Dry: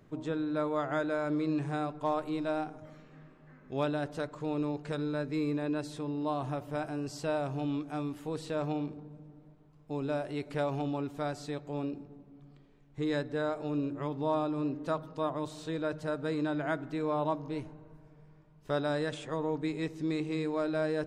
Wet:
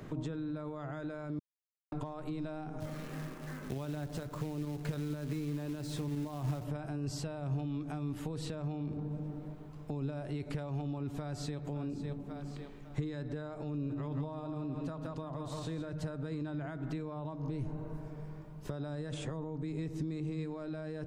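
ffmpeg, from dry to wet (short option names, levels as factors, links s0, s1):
-filter_complex "[0:a]asettb=1/sr,asplit=3[s0][s1][s2];[s0]atrim=end=2.804[s3];[s1]atrim=start=2.8:end=6.64,asetpts=PTS-STARTPTS,afade=t=in:d=0.004:c=qsin,afade=t=out:st=3.836:d=0.004:c=qsin,acrusher=bits=3:mode=log:mix=0:aa=0.000001[s4];[s2]atrim=start=6.636[s5];[s3][s4]acrossfade=d=0.004:c1=hsin:c2=qsin[s6];[s6][s5]acrossfade=d=0.004:c1=qsin:c2=hsin,asplit=2[s7][s8];[s8]afade=t=in:st=11.09:d=0.01,afade=t=out:st=11.63:d=0.01,aecho=0:1:550|1100|1650:0.223872|0.055968|0.013992[s9];[s7][s9]amix=inputs=2:normalize=0,asplit=3[s10][s11][s12];[s10]afade=t=out:st=13.89:d=0.02[s13];[s11]aecho=1:1:170|340|510|680|850:0.398|0.163|0.0669|0.0274|0.0112,afade=t=in:st=13.89:d=0.02,afade=t=out:st=15.91:d=0.02[s14];[s12]afade=t=in:st=15.91:d=0.02[s15];[s13][s14][s15]amix=inputs=3:normalize=0,asettb=1/sr,asplit=3[s16][s17][s18];[s16]atrim=end=17.454[s19];[s17]atrim=start=17.45:end=20.39,asetpts=PTS-STARTPTS,afade=t=in:d=0.004:c=qsin,afade=t=out:st=2.936:d=0.004:c=qsin,equalizer=f=2500:t=o:w=2.2:g=-4[s20];[s18]atrim=start=20.386[s21];[s19][s20]acrossfade=d=0.004:c1=hsin:c2=qsin[s22];[s22][s21]acrossfade=d=0.004:c1=qsin:c2=hsin,asplit=3[s23][s24][s25];[s23]atrim=end=1.39,asetpts=PTS-STARTPTS,afade=t=out:st=1.386:d=0.004:c=hsin[s26];[s24]atrim=start=1.39:end=1.92,asetpts=PTS-STARTPTS,volume=0[s27];[s25]atrim=start=1.92,asetpts=PTS-STARTPTS,afade=t=in:d=0.004:c=hsin[s28];[s26][s27][s28]concat=n=3:v=0:a=1,acompressor=threshold=0.0158:ratio=6,alimiter=level_in=3.55:limit=0.0631:level=0:latency=1:release=19,volume=0.282,acrossover=split=180[s29][s30];[s30]acompressor=threshold=0.00224:ratio=10[s31];[s29][s31]amix=inputs=2:normalize=0,volume=4.22"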